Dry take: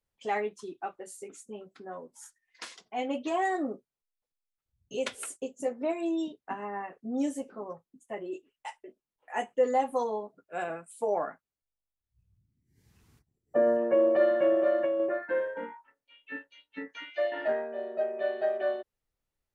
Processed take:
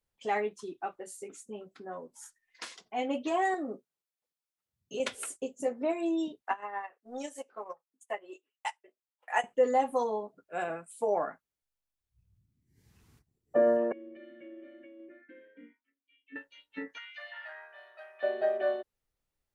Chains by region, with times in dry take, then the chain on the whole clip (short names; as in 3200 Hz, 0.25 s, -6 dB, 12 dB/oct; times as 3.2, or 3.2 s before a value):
3.54–5 HPF 150 Hz + compressor 4:1, threshold -32 dBFS
6.42–9.44 HPF 700 Hz + transient shaper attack +8 dB, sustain -8 dB
13.92–16.36 compressor 1.5:1, threshold -34 dBFS + vowel filter i
16.98–18.23 HPF 1100 Hz 24 dB/oct + bell 7500 Hz -12 dB 0.2 oct + compressor 2:1, threshold -44 dBFS
whole clip: dry